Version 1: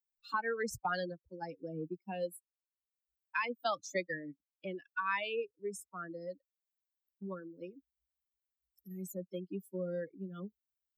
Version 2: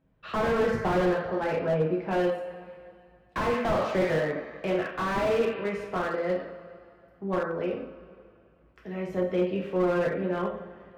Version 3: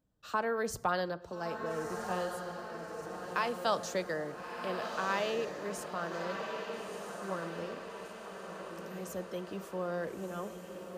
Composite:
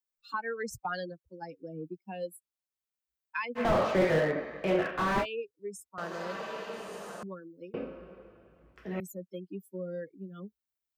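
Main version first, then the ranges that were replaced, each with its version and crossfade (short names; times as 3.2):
1
3.58–5.23 from 2, crossfade 0.06 s
5.98–7.23 from 3
7.74–9 from 2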